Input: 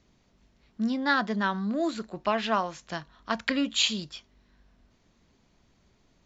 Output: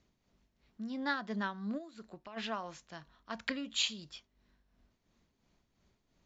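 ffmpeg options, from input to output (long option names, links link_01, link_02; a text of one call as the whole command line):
ffmpeg -i in.wav -filter_complex "[0:a]asplit=3[link_01][link_02][link_03];[link_01]afade=type=out:start_time=1.77:duration=0.02[link_04];[link_02]acompressor=threshold=-35dB:ratio=6,afade=type=in:start_time=1.77:duration=0.02,afade=type=out:start_time=2.36:duration=0.02[link_05];[link_03]afade=type=in:start_time=2.36:duration=0.02[link_06];[link_04][link_05][link_06]amix=inputs=3:normalize=0,tremolo=f=2.9:d=0.57,volume=-7dB" out.wav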